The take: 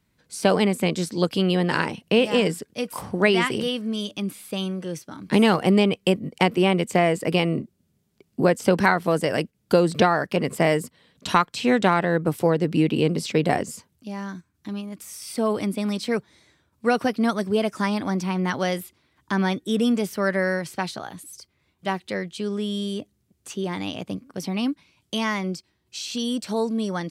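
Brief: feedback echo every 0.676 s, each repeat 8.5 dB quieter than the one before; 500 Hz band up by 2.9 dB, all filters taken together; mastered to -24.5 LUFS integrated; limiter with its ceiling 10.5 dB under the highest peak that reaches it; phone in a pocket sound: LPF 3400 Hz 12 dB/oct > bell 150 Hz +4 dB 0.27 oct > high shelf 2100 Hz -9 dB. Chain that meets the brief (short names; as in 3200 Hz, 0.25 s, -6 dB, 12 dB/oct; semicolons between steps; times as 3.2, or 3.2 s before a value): bell 500 Hz +4 dB; limiter -12.5 dBFS; LPF 3400 Hz 12 dB/oct; bell 150 Hz +4 dB 0.27 oct; high shelf 2100 Hz -9 dB; feedback echo 0.676 s, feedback 38%, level -8.5 dB; gain +1 dB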